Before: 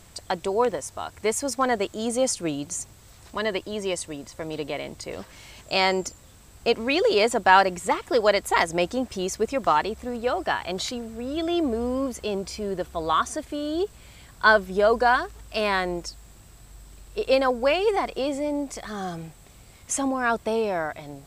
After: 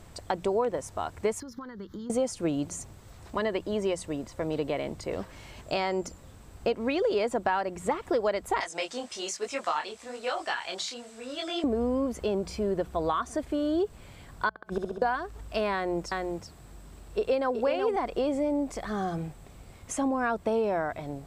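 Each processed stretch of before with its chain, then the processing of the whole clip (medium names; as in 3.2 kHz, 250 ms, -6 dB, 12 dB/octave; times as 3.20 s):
1.40–2.10 s: peaking EQ 190 Hz +8 dB 0.29 oct + compression 16:1, threshold -34 dBFS + static phaser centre 2.5 kHz, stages 6
8.60–11.64 s: frequency weighting ITU-R 468 + detune thickener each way 39 cents
14.49–15.02 s: inverted gate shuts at -17 dBFS, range -40 dB + flutter echo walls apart 11.5 m, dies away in 1.2 s
15.74–17.96 s: high-pass 66 Hz + delay 374 ms -6 dB
whole clip: compression 5:1, threshold -26 dBFS; treble shelf 2 kHz -10.5 dB; hum notches 60/120/180 Hz; trim +3 dB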